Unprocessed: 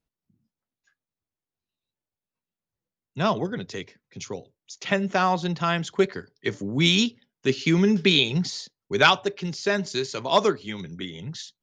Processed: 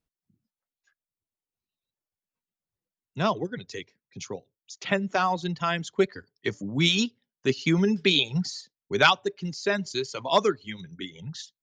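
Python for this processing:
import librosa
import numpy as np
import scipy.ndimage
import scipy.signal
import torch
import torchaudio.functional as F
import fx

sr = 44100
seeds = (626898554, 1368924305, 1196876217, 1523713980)

y = fx.dereverb_blind(x, sr, rt60_s=1.2)
y = y * librosa.db_to_amplitude(-1.5)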